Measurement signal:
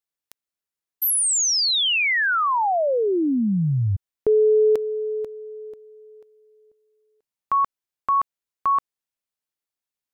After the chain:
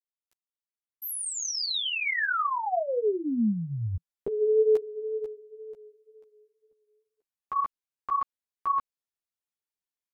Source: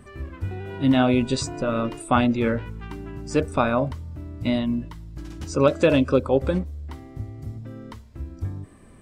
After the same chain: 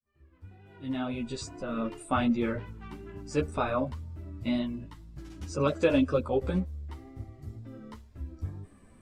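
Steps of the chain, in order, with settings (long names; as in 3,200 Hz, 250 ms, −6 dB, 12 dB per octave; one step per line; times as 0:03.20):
fade in at the beginning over 2.29 s
pitch vibrato 2 Hz 24 cents
dynamic equaliser 170 Hz, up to +3 dB, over −41 dBFS, Q 7.8
string-ensemble chorus
level −4 dB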